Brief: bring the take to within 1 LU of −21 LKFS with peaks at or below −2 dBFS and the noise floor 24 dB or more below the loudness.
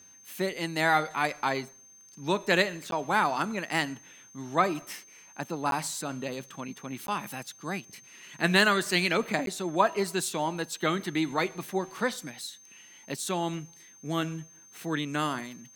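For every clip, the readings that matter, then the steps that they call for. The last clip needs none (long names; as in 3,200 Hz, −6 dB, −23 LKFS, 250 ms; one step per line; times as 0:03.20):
number of dropouts 4; longest dropout 12 ms; interfering tone 6,300 Hz; level of the tone −52 dBFS; integrated loudness −29.5 LKFS; sample peak −6.0 dBFS; target loudness −21.0 LKFS
→ repair the gap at 0:02.91/0:05.71/0:07.07/0:09.46, 12 ms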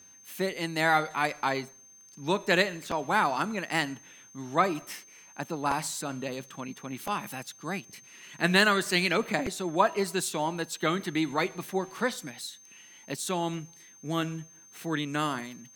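number of dropouts 0; interfering tone 6,300 Hz; level of the tone −52 dBFS
→ notch filter 6,300 Hz, Q 30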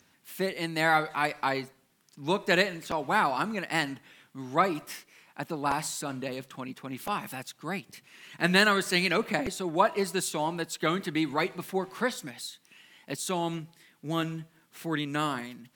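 interfering tone none found; integrated loudness −29.0 LKFS; sample peak −6.0 dBFS; target loudness −21.0 LKFS
→ level +8 dB
brickwall limiter −2 dBFS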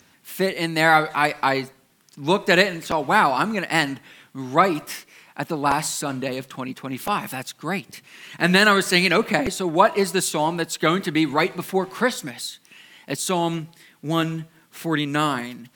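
integrated loudness −21.5 LKFS; sample peak −2.0 dBFS; background noise floor −58 dBFS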